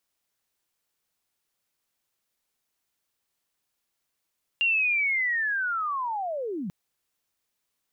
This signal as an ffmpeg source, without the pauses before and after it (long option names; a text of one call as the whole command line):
ffmpeg -f lavfi -i "aevalsrc='pow(10,(-20-9.5*t/2.09)/20)*sin(2*PI*(2800*t-2640*t*t/(2*2.09)))':duration=2.09:sample_rate=44100" out.wav